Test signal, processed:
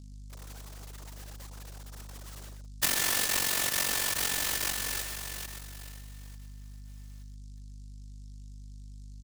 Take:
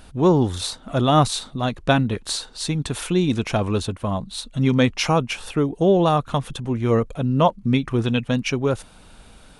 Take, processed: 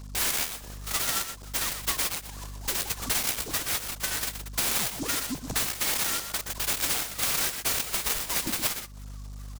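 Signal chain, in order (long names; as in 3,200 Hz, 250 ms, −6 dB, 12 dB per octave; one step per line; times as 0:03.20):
three sine waves on the formant tracks
in parallel at −8 dB: comparator with hysteresis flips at −16 dBFS
on the sum: voice inversion scrambler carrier 2,600 Hz
mains hum 50 Hz, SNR 25 dB
downward compressor 8 to 1, threshold −31 dBFS
slap from a distant wall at 21 metres, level −8 dB
short delay modulated by noise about 5,800 Hz, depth 0.15 ms
level +4 dB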